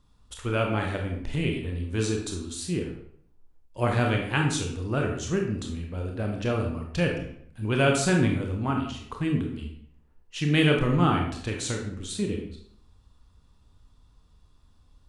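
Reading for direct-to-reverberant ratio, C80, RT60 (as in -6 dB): 1.0 dB, 8.5 dB, 0.65 s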